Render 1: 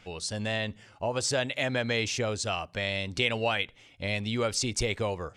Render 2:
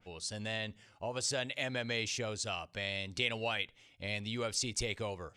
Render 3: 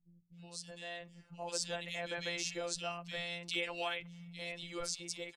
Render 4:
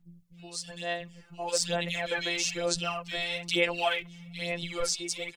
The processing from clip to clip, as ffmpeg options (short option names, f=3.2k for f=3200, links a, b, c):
-af "adynamicequalizer=threshold=0.00708:dfrequency=2100:dqfactor=0.7:tfrequency=2100:tqfactor=0.7:attack=5:release=100:ratio=0.375:range=2:mode=boostabove:tftype=highshelf,volume=-8.5dB"
-filter_complex "[0:a]dynaudnorm=f=200:g=13:m=5.5dB,afftfilt=real='hypot(re,im)*cos(PI*b)':imag='0':win_size=1024:overlap=0.75,acrossover=split=200|2500[a][b][c];[c]adelay=320[d];[b]adelay=370[e];[a][e][d]amix=inputs=3:normalize=0,volume=-2.5dB"
-af "aphaser=in_gain=1:out_gain=1:delay=2.8:decay=0.58:speed=1.1:type=sinusoidal,volume=7dB"